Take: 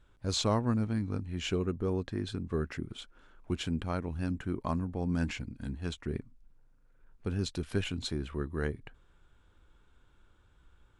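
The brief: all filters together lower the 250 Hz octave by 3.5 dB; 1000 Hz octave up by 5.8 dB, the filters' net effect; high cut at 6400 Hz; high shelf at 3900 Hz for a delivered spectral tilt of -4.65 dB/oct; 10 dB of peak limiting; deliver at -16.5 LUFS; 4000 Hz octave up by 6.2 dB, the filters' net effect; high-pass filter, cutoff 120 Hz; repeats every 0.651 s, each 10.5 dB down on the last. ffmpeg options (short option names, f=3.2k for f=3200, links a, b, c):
-af "highpass=120,lowpass=6.4k,equalizer=f=250:t=o:g=-4.5,equalizer=f=1k:t=o:g=6.5,highshelf=f=3.9k:g=4.5,equalizer=f=4k:t=o:g=5,alimiter=limit=-23.5dB:level=0:latency=1,aecho=1:1:651|1302|1953:0.299|0.0896|0.0269,volume=20.5dB"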